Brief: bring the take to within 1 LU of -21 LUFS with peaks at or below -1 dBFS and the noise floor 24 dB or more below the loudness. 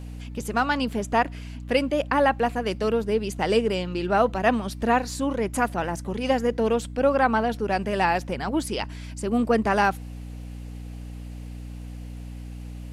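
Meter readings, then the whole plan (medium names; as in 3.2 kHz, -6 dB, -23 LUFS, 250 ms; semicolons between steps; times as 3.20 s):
hum 60 Hz; highest harmonic 300 Hz; hum level -34 dBFS; loudness -24.5 LUFS; peak level -8.0 dBFS; loudness target -21.0 LUFS
-> de-hum 60 Hz, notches 5; trim +3.5 dB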